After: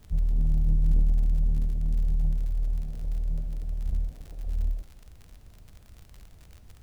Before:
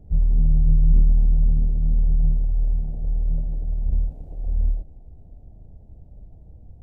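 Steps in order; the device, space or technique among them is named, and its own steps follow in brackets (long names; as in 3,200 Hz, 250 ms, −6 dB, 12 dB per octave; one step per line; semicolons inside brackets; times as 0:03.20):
record under a worn stylus (stylus tracing distortion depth 0.45 ms; surface crackle 50 per second −31 dBFS; pink noise bed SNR 40 dB)
level −6.5 dB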